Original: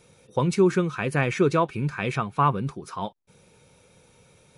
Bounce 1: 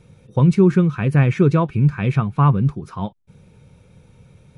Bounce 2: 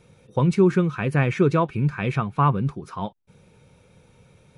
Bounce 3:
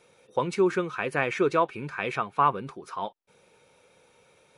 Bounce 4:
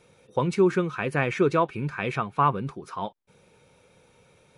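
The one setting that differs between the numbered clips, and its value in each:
tone controls, bass: +14, +6, -14, -4 dB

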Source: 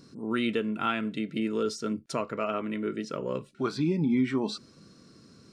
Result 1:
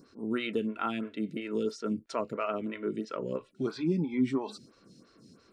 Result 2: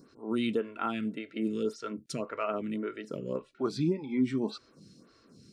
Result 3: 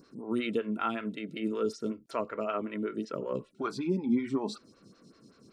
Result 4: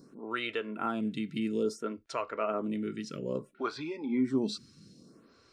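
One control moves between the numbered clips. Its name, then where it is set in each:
photocell phaser, rate: 3, 1.8, 5.3, 0.59 Hz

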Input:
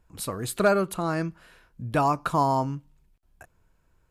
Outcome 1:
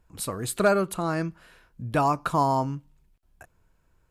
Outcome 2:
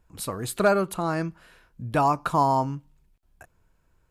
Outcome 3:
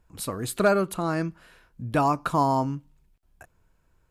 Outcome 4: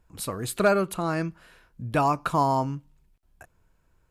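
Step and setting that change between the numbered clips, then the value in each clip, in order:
dynamic EQ, frequency: 8300, 860, 270, 2500 Hz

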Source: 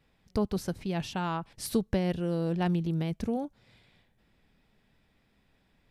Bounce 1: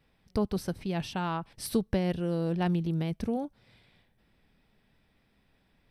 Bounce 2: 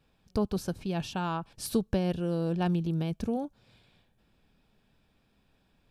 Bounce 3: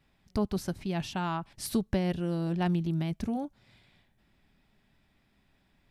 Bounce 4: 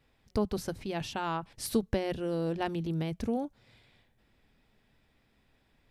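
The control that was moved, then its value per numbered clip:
notch, frequency: 6900, 2000, 480, 180 Hz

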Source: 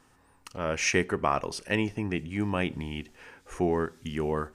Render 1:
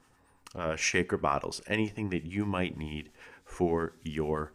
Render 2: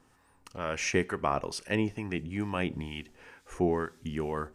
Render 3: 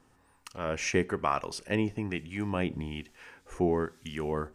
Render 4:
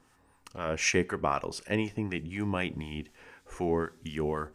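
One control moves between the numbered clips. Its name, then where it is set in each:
harmonic tremolo, rate: 8.8, 2.2, 1.1, 4 Hz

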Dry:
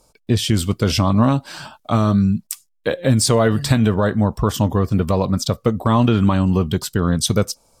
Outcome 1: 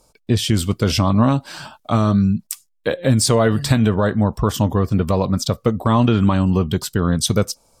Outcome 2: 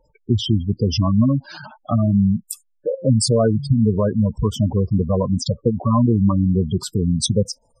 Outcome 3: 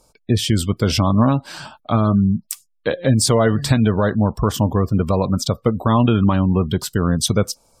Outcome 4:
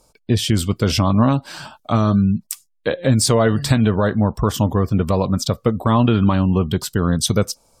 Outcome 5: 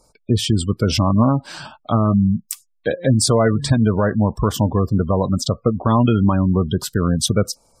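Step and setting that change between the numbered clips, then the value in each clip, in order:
spectral gate, under each frame's peak: -60, -10, -35, -45, -25 dB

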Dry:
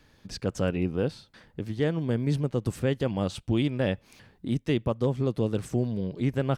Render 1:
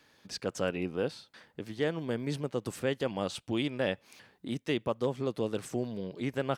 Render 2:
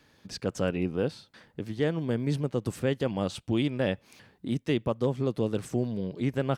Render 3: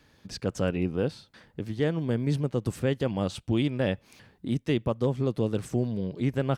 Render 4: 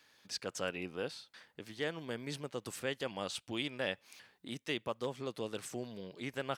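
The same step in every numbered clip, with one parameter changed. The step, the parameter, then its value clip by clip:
HPF, cutoff: 460, 140, 53, 1500 Hz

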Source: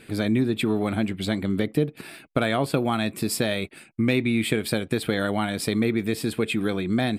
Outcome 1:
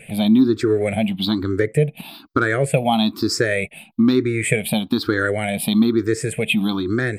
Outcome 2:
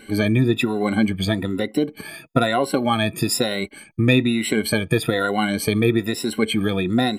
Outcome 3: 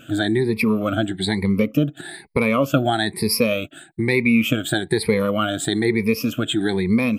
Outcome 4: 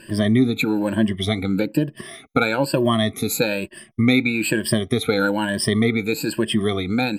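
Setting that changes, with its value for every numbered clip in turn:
moving spectral ripple, ripples per octave: 0.5, 2.1, 0.87, 1.3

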